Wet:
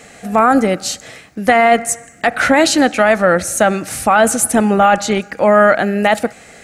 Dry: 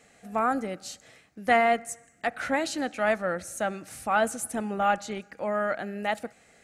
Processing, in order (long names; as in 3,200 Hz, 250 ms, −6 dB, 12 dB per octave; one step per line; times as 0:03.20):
boost into a limiter +19.5 dB
level −1 dB